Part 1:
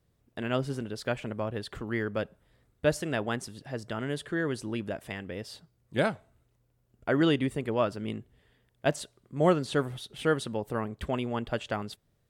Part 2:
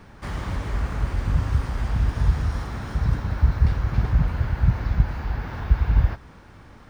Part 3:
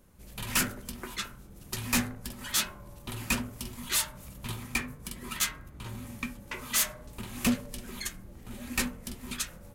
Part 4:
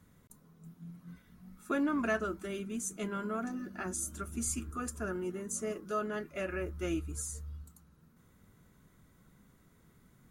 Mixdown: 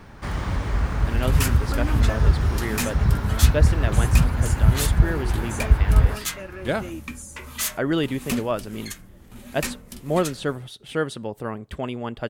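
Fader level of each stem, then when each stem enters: +1.5 dB, +2.5 dB, 0.0 dB, -1.0 dB; 0.70 s, 0.00 s, 0.85 s, 0.00 s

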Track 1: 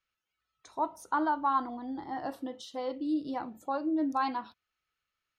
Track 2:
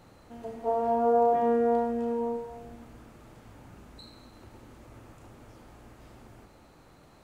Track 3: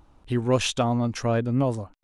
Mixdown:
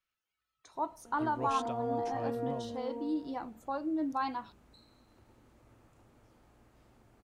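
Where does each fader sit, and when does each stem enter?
-3.5 dB, -12.0 dB, -18.5 dB; 0.00 s, 0.75 s, 0.90 s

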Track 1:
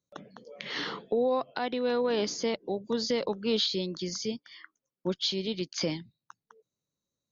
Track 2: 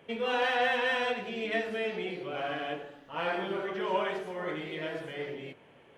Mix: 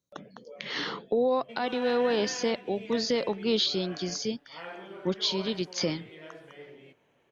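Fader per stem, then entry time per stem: +1.5 dB, -10.5 dB; 0.00 s, 1.40 s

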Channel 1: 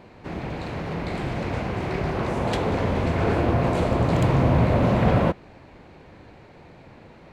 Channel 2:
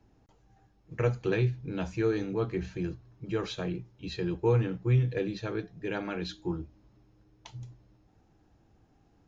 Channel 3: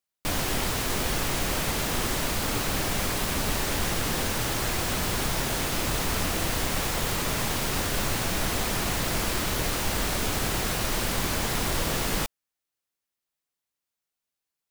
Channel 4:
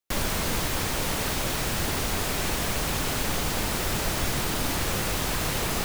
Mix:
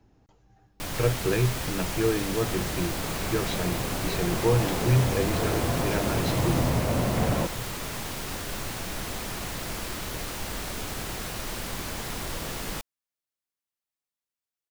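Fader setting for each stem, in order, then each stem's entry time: -6.5 dB, +2.5 dB, -6.5 dB, -9.5 dB; 2.15 s, 0.00 s, 0.55 s, 0.85 s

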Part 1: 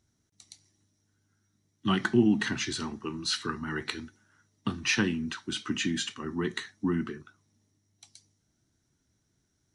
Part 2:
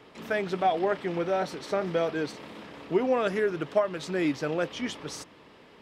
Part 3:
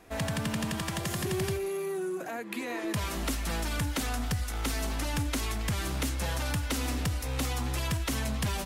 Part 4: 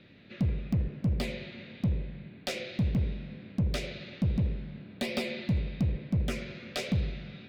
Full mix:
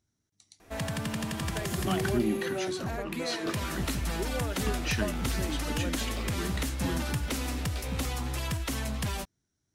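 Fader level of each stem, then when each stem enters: -6.0 dB, -11.5 dB, -1.5 dB, -8.5 dB; 0.00 s, 1.25 s, 0.60 s, 1.00 s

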